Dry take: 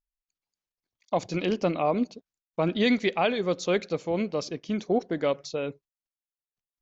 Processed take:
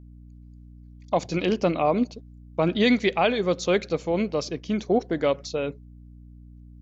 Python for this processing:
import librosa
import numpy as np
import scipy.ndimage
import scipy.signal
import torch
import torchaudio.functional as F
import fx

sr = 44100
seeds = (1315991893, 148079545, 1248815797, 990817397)

y = fx.add_hum(x, sr, base_hz=60, snr_db=20)
y = F.gain(torch.from_numpy(y), 3.0).numpy()